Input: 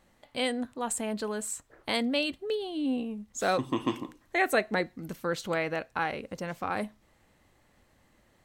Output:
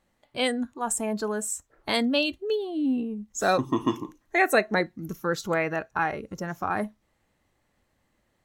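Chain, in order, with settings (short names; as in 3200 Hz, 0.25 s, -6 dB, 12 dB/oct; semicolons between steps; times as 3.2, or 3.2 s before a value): spectral noise reduction 11 dB; gain +4.5 dB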